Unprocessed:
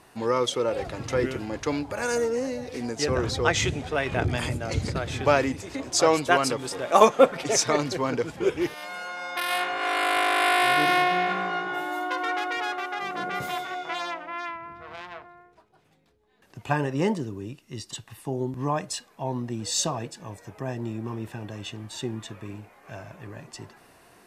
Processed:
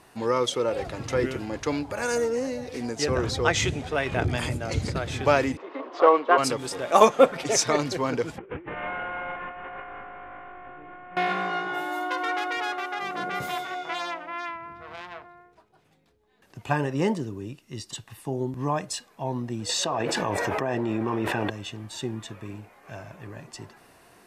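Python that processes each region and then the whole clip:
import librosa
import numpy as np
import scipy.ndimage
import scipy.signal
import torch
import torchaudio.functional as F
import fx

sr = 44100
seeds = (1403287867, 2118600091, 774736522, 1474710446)

y = fx.chain(x, sr, fx.quant_companded(bits=4),
    fx.cabinet(low_hz=310.0, low_slope=24, high_hz=2600.0, hz=(480.0, 1100.0, 1700.0, 2400.0), db=(3, 8, -4, -7)), at=(5.57, 6.38))
y = fx.chain(y, sr, fx.cvsd(bps=16000),
    fx.lowpass(hz=2000.0, slope=12),
    fx.over_compress(threshold_db=-39.0, ratio=-1.0), at=(8.38, 11.17))
y = fx.chain(y, sr, fx.bass_treble(bass_db=-12, treble_db=-13),
    fx.env_flatten(amount_pct=100), at=(19.69, 21.5))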